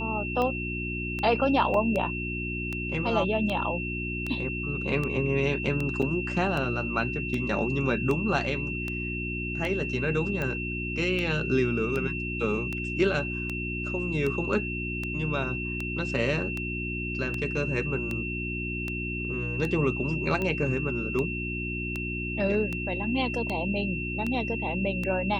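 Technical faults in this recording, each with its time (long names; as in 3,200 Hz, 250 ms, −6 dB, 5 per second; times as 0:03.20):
mains hum 60 Hz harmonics 6 −34 dBFS
scratch tick 78 rpm −18 dBFS
whistle 2,700 Hz −33 dBFS
0:01.74: drop-out 2.2 ms
0:06.02–0:06.03: drop-out 5.1 ms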